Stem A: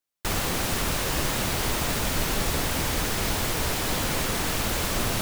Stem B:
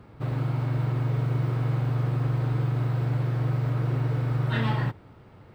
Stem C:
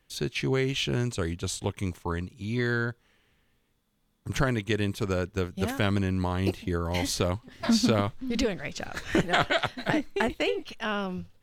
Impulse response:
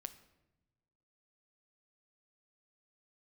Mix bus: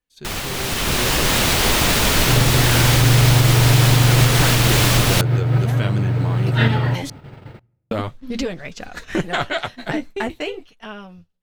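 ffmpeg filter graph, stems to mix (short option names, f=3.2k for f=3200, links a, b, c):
-filter_complex "[0:a]volume=-1.5dB[a];[1:a]bandreject=f=1.1k:w=6.6,adelay=2050,volume=0dB,asplit=2[b][c];[c]volume=-5dB[d];[2:a]flanger=delay=4:depth=9.5:regen=-33:speed=0.45:shape=sinusoidal,volume=-6dB,asplit=3[e][f][g];[e]atrim=end=7.1,asetpts=PTS-STARTPTS,afade=t=out:st=7.096:d=0.004:c=hsin[h];[f]atrim=start=7.1:end=7.91,asetpts=PTS-STARTPTS,volume=0[i];[g]atrim=start=7.91,asetpts=PTS-STARTPTS,afade=t=in:d=0.004:c=hsin[j];[h][i][j]concat=n=3:v=0:a=1,asplit=3[k][l][m];[l]volume=-22.5dB[n];[m]apad=whole_len=334884[o];[b][o]sidechaincompress=threshold=-52dB:ratio=4:attack=24:release=117[p];[a][p]amix=inputs=2:normalize=0,equalizer=f=3.2k:w=0.77:g=4.5,alimiter=limit=-15.5dB:level=0:latency=1:release=200,volume=0dB[q];[3:a]atrim=start_sample=2205[r];[d][n]amix=inputs=2:normalize=0[s];[s][r]afir=irnorm=-1:irlink=0[t];[k][q][t]amix=inputs=3:normalize=0,agate=range=-9dB:threshold=-46dB:ratio=16:detection=peak,dynaudnorm=f=140:g=13:m=11.5dB"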